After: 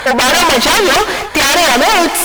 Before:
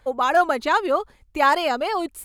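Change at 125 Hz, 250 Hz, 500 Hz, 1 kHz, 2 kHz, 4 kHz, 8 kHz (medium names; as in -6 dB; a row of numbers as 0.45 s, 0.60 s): no reading, +13.0 dB, +9.0 dB, +8.0 dB, +14.0 dB, +20.5 dB, +27.0 dB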